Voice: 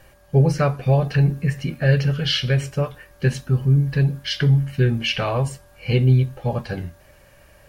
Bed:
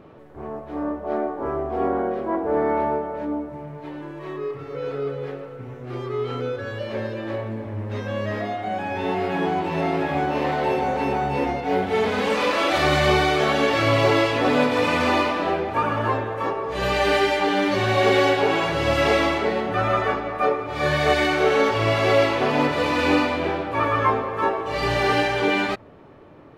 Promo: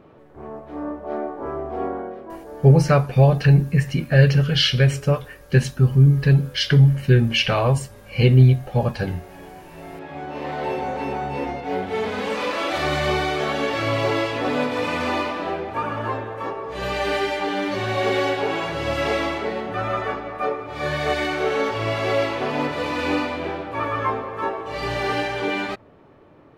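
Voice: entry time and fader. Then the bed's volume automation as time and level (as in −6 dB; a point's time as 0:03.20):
2.30 s, +3.0 dB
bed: 0:01.79 −2.5 dB
0:02.69 −18.5 dB
0:09.66 −18.5 dB
0:10.63 −3.5 dB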